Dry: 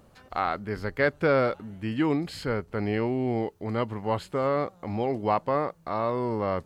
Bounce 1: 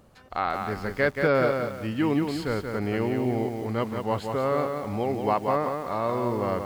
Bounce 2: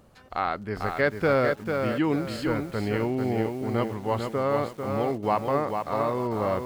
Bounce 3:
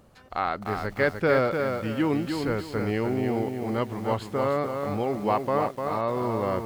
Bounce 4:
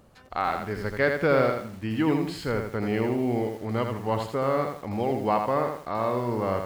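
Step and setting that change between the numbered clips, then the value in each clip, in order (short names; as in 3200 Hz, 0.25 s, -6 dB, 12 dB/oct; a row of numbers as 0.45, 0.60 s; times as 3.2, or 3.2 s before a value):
lo-fi delay, time: 179, 446, 300, 82 ms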